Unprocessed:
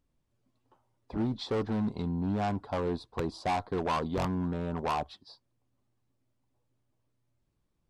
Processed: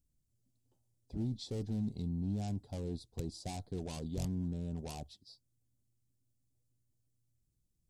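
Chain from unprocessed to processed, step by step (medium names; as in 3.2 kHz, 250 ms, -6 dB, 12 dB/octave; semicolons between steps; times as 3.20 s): FFT filter 120 Hz 0 dB, 750 Hz -15 dB, 1.1 kHz -28 dB, 7.2 kHz +5 dB; trim -1.5 dB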